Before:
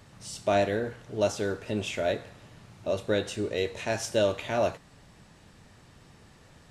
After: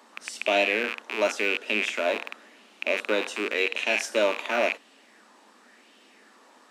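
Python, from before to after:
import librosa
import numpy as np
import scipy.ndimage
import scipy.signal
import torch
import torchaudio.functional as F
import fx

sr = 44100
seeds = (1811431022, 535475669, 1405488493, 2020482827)

y = fx.rattle_buzz(x, sr, strikes_db=-45.0, level_db=-19.0)
y = scipy.signal.sosfilt(scipy.signal.butter(12, 220.0, 'highpass', fs=sr, output='sos'), y)
y = fx.bell_lfo(y, sr, hz=0.92, low_hz=960.0, high_hz=3000.0, db=9)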